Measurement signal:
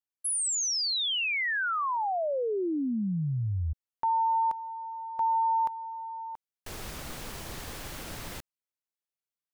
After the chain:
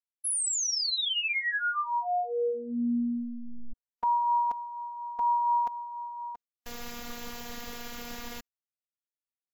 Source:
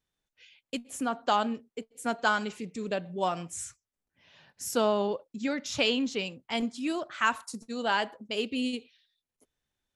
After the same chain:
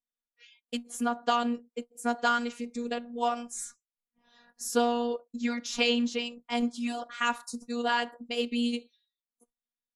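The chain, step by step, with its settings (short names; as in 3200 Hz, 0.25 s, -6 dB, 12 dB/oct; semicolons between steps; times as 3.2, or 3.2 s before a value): vibrato 4.2 Hz 34 cents; spectral noise reduction 17 dB; robotiser 238 Hz; gain +2.5 dB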